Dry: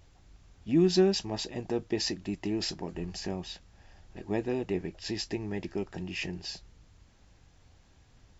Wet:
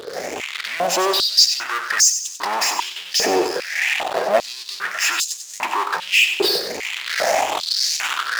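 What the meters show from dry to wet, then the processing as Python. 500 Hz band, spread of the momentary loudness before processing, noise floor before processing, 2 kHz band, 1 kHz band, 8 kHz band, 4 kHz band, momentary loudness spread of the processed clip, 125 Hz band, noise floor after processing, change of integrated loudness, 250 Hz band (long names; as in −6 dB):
+9.0 dB, 15 LU, −61 dBFS, +23.5 dB, +23.5 dB, can't be measured, +19.0 dB, 11 LU, below −10 dB, −35 dBFS, +13.0 dB, −1.5 dB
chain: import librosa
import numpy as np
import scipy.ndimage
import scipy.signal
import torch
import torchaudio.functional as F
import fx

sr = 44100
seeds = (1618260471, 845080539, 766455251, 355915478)

p1 = fx.spec_ripple(x, sr, per_octave=0.62, drift_hz=1.7, depth_db=17)
p2 = fx.recorder_agc(p1, sr, target_db=-20.0, rise_db_per_s=46.0, max_gain_db=30)
p3 = fx.spec_repair(p2, sr, seeds[0], start_s=3.3, length_s=0.38, low_hz=2400.0, high_hz=4900.0, source='both')
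p4 = fx.high_shelf(p3, sr, hz=6200.0, db=-7.0)
p5 = fx.leveller(p4, sr, passes=1)
p6 = (np.mod(10.0 ** (15.0 / 20.0) * p5 + 1.0, 2.0) - 1.0) / 10.0 ** (15.0 / 20.0)
p7 = p5 + (p6 * librosa.db_to_amplitude(-5.0))
p8 = fx.power_curve(p7, sr, exponent=0.35)
p9 = p8 + fx.echo_feedback(p8, sr, ms=94, feedback_pct=42, wet_db=-9.0, dry=0)
p10 = fx.filter_held_highpass(p9, sr, hz=2.5, low_hz=450.0, high_hz=6600.0)
y = p10 * librosa.db_to_amplitude(-2.5)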